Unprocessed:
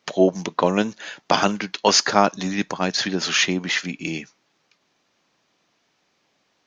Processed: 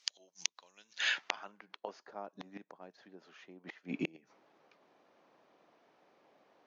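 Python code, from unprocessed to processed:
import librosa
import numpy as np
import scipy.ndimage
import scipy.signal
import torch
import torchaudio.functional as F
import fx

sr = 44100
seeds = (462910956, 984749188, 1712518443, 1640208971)

y = fx.gate_flip(x, sr, shuts_db=-17.0, range_db=-32)
y = fx.filter_sweep_bandpass(y, sr, from_hz=6400.0, to_hz=570.0, start_s=0.71, end_s=1.75, q=0.96)
y = y * 10.0 ** (6.0 / 20.0)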